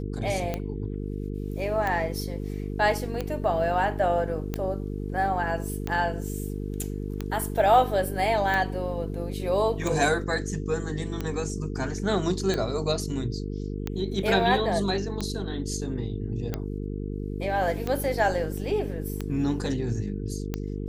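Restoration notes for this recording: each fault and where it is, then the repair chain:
mains buzz 50 Hz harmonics 9 −32 dBFS
scratch tick 45 rpm −15 dBFS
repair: click removal
hum removal 50 Hz, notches 9

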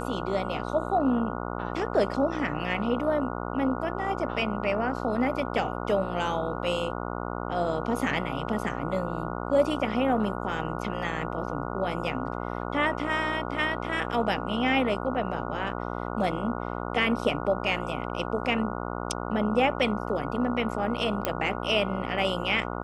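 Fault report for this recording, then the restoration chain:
mains buzz 60 Hz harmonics 24 −33 dBFS
0:21.25: click −10 dBFS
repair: click removal
hum removal 60 Hz, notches 24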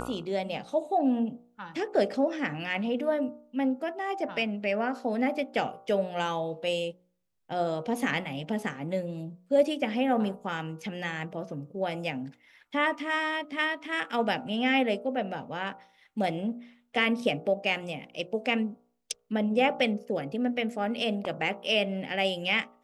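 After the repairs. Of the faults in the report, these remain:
none of them is left

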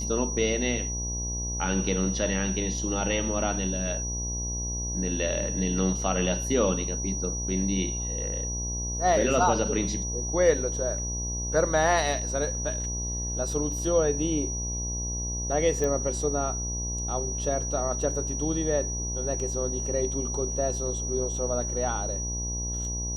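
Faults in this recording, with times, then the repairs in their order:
mains buzz 60 Hz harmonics 18 −33 dBFS
whistle 5,800 Hz −32 dBFS
0:15.84: click −17 dBFS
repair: click removal
hum removal 60 Hz, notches 18
notch filter 5,800 Hz, Q 30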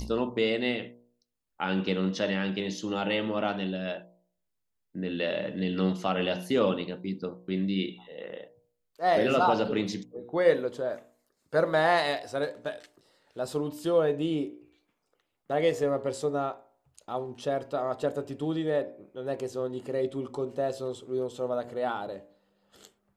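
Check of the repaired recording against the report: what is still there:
none of them is left

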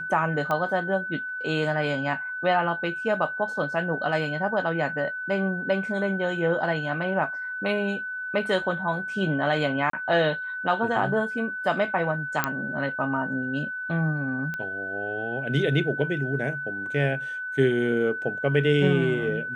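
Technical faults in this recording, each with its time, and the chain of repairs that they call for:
whistle 1,500 Hz −30 dBFS
0:00.51: click −15 dBFS
0:09.90–0:09.93: drop-out 33 ms
0:12.44: click −7 dBFS
0:14.54: click −20 dBFS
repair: click removal
notch filter 1,500 Hz, Q 30
repair the gap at 0:09.90, 33 ms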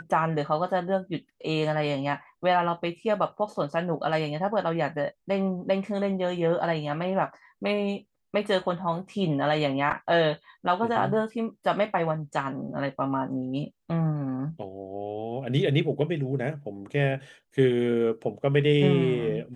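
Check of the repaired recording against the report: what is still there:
none of them is left

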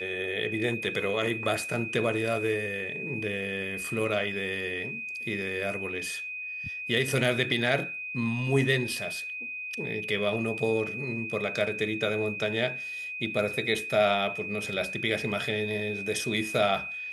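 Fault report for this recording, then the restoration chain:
whistle 2,500 Hz −34 dBFS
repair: notch filter 2,500 Hz, Q 30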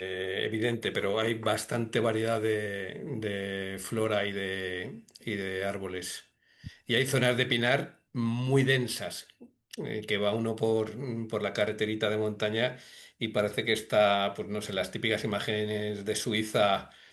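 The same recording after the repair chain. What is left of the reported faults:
none of them is left

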